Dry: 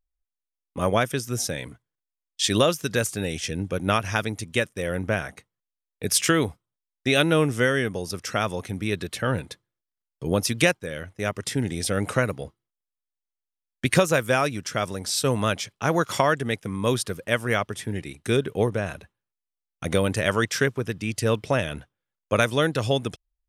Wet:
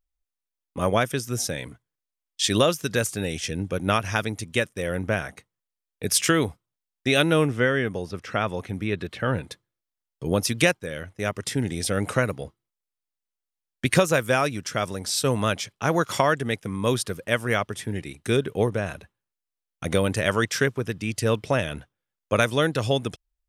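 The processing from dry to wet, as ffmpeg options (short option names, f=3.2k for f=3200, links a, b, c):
-filter_complex "[0:a]asettb=1/sr,asplit=3[a][b][c];[a]atrim=end=7.454[d];[b]atrim=start=7.45:end=9.51,asetpts=PTS-STARTPTS,afade=t=in:d=0.004:c=qsin,afade=t=out:st=2.056:d=0.004:c=qsin,acrossover=split=3600[e][f];[f]acompressor=threshold=-53dB:ratio=4:attack=1:release=60[g];[e][g]amix=inputs=2:normalize=0[h];[c]atrim=start=9.506[i];[d][h]acrossfade=d=0.004:c1=hsin:c2=qsin[j];[j][i]acrossfade=d=0.004:c1=qsin:c2=hsin"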